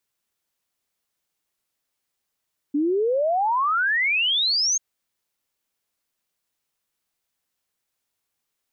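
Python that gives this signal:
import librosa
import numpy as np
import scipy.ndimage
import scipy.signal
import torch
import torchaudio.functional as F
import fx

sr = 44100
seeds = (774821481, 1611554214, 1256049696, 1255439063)

y = fx.ess(sr, length_s=2.04, from_hz=280.0, to_hz=6600.0, level_db=-18.5)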